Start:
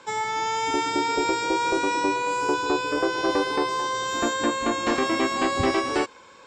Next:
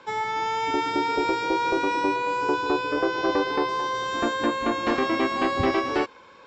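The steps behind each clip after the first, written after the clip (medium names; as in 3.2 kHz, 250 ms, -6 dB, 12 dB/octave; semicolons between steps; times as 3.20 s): Bessel low-pass 4 kHz, order 8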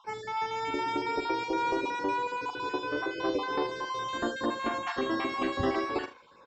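random holes in the spectrogram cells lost 26%; early reflections 43 ms -9.5 dB, 76 ms -15 dB; trim -6 dB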